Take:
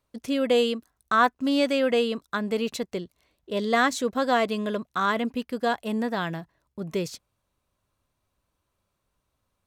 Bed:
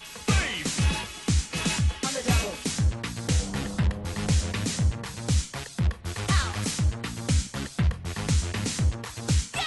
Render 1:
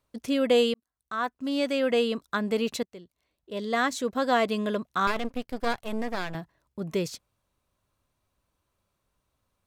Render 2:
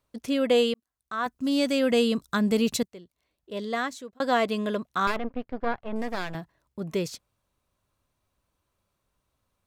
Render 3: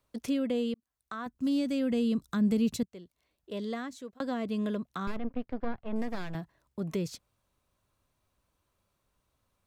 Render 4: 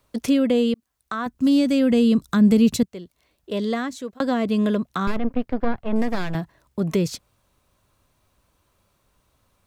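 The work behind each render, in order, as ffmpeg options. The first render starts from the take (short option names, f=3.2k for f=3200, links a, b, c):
-filter_complex "[0:a]asettb=1/sr,asplit=3[a][b][c];[a]atrim=end=5.074[d];[b]atrim=start=5.07:end=6.35,asetpts=PTS-STARTPTS,afade=t=in:d=0.004:c=qsin,afade=t=out:st=1.276:d=0.004:c=qsin,aeval=exprs='max(val(0),0)':c=same[e];[c]atrim=start=6.346[f];[d][e]acrossfade=d=0.004:c1=hsin:c2=qsin[g];[g][f]acrossfade=d=0.004:c1=qsin:c2=hsin,asplit=3[h][i][j];[h]atrim=end=0.74,asetpts=PTS-STARTPTS,afade=t=out:st=0.736:d=0.004:c=hsin[k];[i]atrim=start=0.74:end=2.83,asetpts=PTS-STARTPTS,afade=t=in:d=1.41,afade=t=out:st=2.086:d=0.004:c=hsin:silence=0.141254[l];[j]atrim=start=2.83,asetpts=PTS-STARTPTS,afade=t=in:d=1.72:silence=0.141254[m];[k][l][m]concat=n=3:v=0:a=1"
-filter_complex "[0:a]asettb=1/sr,asplit=3[a][b][c];[a]atrim=end=1.264[d];[b]atrim=start=1.26:end=2.88,asetpts=PTS-STARTPTS,afade=t=in:d=0.004:c=qsin,afade=t=out:st=1.616:d=0.004:c=qsin,bass=f=250:g=10,treble=f=4k:g=8[e];[c]atrim=start=2.876[f];[d][e]acrossfade=d=0.004:c1=hsin:c2=qsin[g];[g][f]acrossfade=d=0.004:c1=qsin:c2=hsin,asettb=1/sr,asplit=3[h][i][j];[h]atrim=end=5.164[k];[i]atrim=start=5.16:end=5.96,asetpts=PTS-STARTPTS,afade=t=in:d=0.004:c=qsin,afade=t=out:st=0.796:d=0.004:c=qsin,lowpass=1.9k[l];[j]atrim=start=5.956[m];[k][l]acrossfade=d=0.004:c1=hsin:c2=qsin[n];[n][m]acrossfade=d=0.004:c1=qsin:c2=hsin,asplit=2[o][p];[o]atrim=end=4.2,asetpts=PTS-STARTPTS,afade=t=out:st=3.61:d=0.59[q];[p]atrim=start=4.2,asetpts=PTS-STARTPTS,afade=t=in:d=0.004:c=hsin[r];[q][r]concat=n=2:v=0:a=1"
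-filter_complex "[0:a]acrossover=split=300[a][b];[b]acompressor=threshold=-38dB:ratio=5[c];[a][c]amix=inputs=2:normalize=0"
-af "volume=11dB"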